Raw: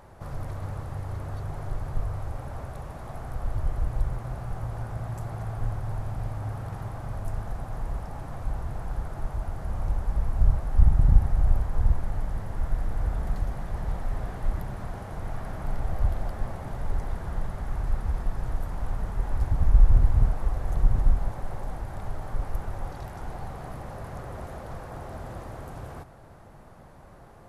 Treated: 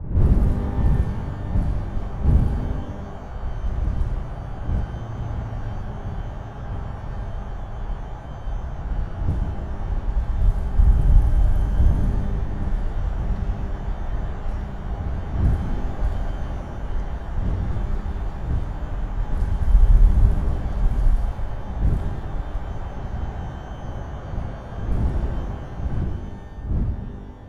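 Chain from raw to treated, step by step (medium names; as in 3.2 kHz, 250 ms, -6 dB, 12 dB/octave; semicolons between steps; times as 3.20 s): wind noise 96 Hz -28 dBFS; level-controlled noise filter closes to 950 Hz, open at -15.5 dBFS; pitch-shifted reverb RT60 1.6 s, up +12 st, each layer -8 dB, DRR 4 dB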